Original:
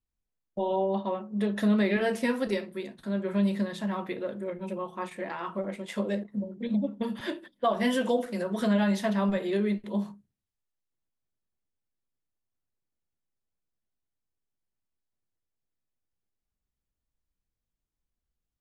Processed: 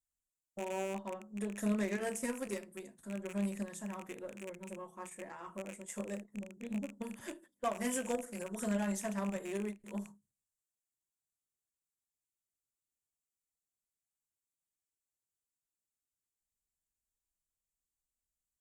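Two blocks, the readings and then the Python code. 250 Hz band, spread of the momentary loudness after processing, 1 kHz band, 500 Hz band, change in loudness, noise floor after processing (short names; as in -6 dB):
-10.5 dB, 12 LU, -10.5 dB, -10.5 dB, -10.0 dB, under -85 dBFS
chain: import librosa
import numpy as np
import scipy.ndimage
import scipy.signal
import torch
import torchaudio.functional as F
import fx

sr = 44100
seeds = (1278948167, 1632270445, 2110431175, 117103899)

y = fx.rattle_buzz(x, sr, strikes_db=-39.0, level_db=-26.0)
y = fx.cheby_harmonics(y, sr, harmonics=(3, 8), levels_db=(-16, -36), full_scale_db=-14.0)
y = fx.high_shelf_res(y, sr, hz=5500.0, db=11.5, q=3.0)
y = fx.end_taper(y, sr, db_per_s=300.0)
y = y * librosa.db_to_amplitude(-6.5)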